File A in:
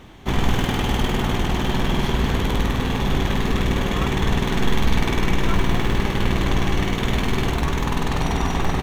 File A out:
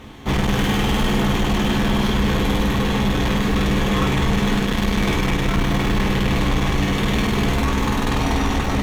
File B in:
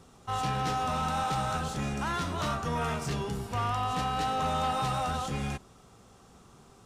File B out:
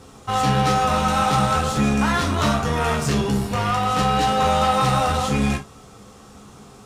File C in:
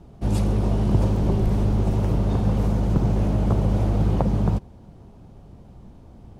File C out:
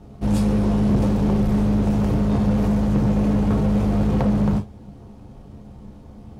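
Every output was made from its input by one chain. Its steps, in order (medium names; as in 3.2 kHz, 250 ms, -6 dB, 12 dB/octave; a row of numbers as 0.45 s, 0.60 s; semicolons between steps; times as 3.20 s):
gated-style reverb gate 90 ms falling, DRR 1.5 dB; saturation -15 dBFS; Chebyshev shaper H 8 -28 dB, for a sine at -15 dBFS; normalise loudness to -20 LUFS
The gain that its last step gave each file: +2.5 dB, +9.0 dB, +2.0 dB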